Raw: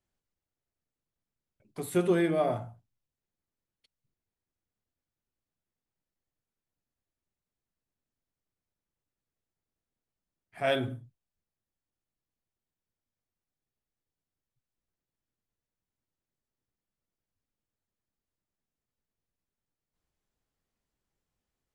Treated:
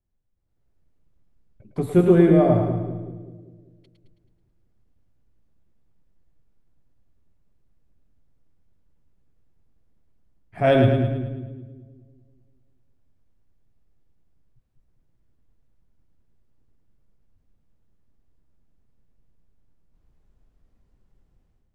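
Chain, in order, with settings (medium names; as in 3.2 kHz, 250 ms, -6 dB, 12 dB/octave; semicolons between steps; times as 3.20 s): tilt EQ -3.5 dB/octave; level rider gain up to 16 dB; on a send: two-band feedback delay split 410 Hz, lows 196 ms, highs 108 ms, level -5 dB; on the sum: trim -6 dB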